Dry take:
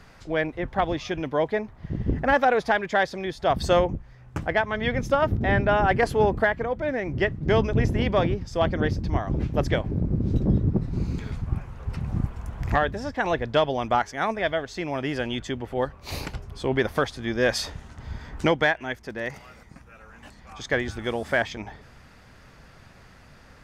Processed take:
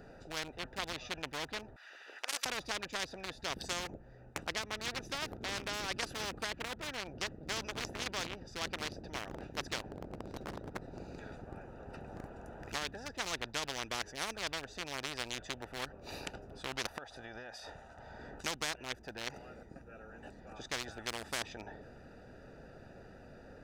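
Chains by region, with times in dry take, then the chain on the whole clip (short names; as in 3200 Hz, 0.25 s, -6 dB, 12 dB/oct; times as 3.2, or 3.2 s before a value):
1.76–2.46 HPF 1500 Hz 24 dB/oct + spectral compressor 2:1
16.87–18.19 resonant low shelf 510 Hz -11 dB, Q 1.5 + compressor 20:1, threshold -33 dBFS
whole clip: Wiener smoothing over 41 samples; tone controls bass -14 dB, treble +8 dB; spectral compressor 4:1; gain -8.5 dB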